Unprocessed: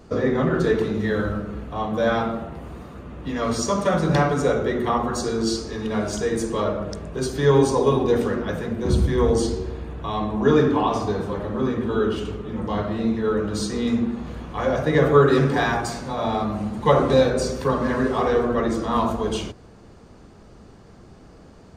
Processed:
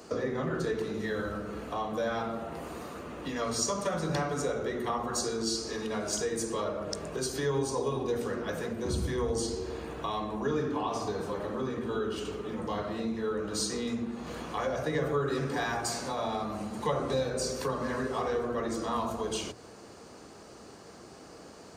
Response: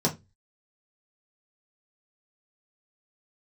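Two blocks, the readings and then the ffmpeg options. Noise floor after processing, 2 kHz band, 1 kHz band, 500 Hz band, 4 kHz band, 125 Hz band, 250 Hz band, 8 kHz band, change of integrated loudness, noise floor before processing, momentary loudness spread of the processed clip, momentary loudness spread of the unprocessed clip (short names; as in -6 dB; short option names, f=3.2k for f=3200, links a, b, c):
-50 dBFS, -9.0 dB, -9.5 dB, -10.5 dB, -5.0 dB, -13.0 dB, -11.5 dB, -1.0 dB, -10.5 dB, -47 dBFS, 11 LU, 12 LU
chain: -filter_complex "[0:a]acrossover=split=150[a][b];[b]acompressor=threshold=-34dB:ratio=3[c];[a][c]amix=inputs=2:normalize=0,highpass=63,bass=f=250:g=-12,treble=f=4k:g=7,bandreject=f=3.6k:w=28,asplit=2[d][e];[1:a]atrim=start_sample=2205,asetrate=31311,aresample=44100[f];[e][f]afir=irnorm=-1:irlink=0,volume=-33dB[g];[d][g]amix=inputs=2:normalize=0,volume=1.5dB"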